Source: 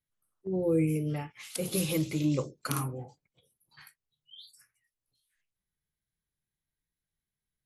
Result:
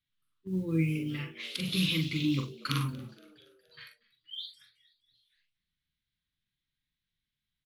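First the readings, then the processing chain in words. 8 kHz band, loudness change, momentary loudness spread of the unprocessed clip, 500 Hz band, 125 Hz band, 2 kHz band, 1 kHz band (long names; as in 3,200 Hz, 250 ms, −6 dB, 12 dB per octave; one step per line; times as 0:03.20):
−8.5 dB, −1.0 dB, 21 LU, −10.0 dB, +0.5 dB, +5.5 dB, −2.5 dB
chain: drawn EQ curve 270 Hz 0 dB, 710 Hz −26 dB, 1,000 Hz −4 dB, 3,600 Hz +10 dB, 7,100 Hz −11 dB
noise that follows the level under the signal 34 dB
double-tracking delay 43 ms −5 dB
on a send: echo with shifted repeats 235 ms, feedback 55%, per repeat +85 Hz, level −22.5 dB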